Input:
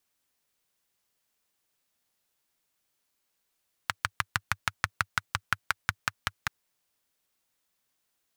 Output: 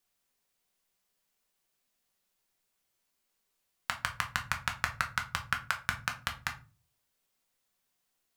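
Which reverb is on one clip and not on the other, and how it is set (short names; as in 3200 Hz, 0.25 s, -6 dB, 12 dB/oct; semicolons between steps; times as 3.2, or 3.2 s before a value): shoebox room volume 170 m³, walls furnished, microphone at 1.1 m; gain -3 dB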